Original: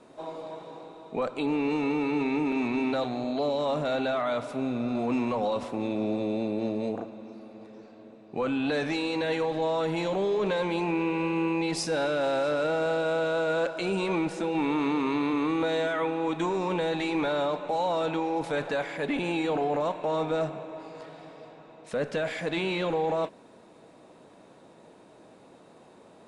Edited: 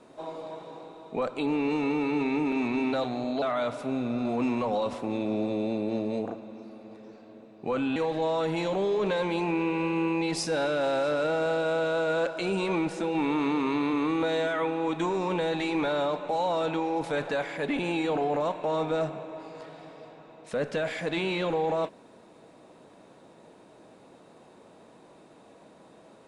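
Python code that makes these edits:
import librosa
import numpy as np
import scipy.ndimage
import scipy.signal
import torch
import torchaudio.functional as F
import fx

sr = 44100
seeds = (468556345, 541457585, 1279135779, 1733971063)

y = fx.edit(x, sr, fx.cut(start_s=3.42, length_s=0.7),
    fx.cut(start_s=8.66, length_s=0.7), tone=tone)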